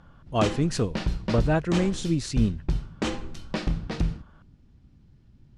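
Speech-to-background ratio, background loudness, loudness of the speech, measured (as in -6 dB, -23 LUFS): 5.5 dB, -32.0 LUFS, -26.5 LUFS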